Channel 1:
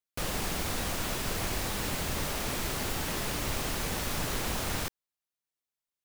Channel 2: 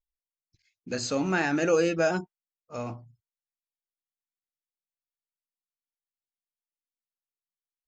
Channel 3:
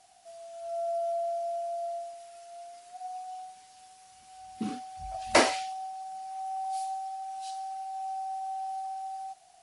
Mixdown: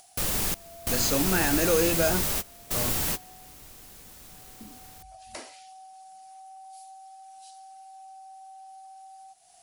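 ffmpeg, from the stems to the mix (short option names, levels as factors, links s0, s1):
-filter_complex "[0:a]volume=0.891,asplit=2[s0][s1];[s1]volume=0.0708[s2];[1:a]asoftclip=type=tanh:threshold=0.188,acrusher=bits=10:mix=0:aa=0.000001,volume=0.841,asplit=2[s3][s4];[2:a]acompressor=threshold=0.0178:ratio=2,volume=0.211[s5];[s4]apad=whole_len=266493[s6];[s0][s6]sidechaingate=range=0.0224:threshold=0.00141:ratio=16:detection=peak[s7];[s2]aecho=0:1:144:1[s8];[s7][s3][s5][s8]amix=inputs=4:normalize=0,crystalizer=i=2:c=0,acompressor=mode=upward:threshold=0.00631:ratio=2.5,lowshelf=f=390:g=3.5"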